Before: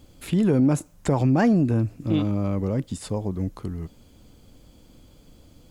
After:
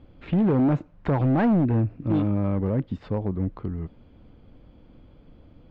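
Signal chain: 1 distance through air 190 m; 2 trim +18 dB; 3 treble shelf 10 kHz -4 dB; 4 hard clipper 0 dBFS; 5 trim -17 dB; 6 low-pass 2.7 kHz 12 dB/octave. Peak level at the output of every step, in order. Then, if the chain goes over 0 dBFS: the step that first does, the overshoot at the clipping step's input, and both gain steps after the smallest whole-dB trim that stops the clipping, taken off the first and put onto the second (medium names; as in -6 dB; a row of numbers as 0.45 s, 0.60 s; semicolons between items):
-10.5 dBFS, +7.5 dBFS, +7.5 dBFS, 0.0 dBFS, -17.0 dBFS, -16.5 dBFS; step 2, 7.5 dB; step 2 +10 dB, step 5 -9 dB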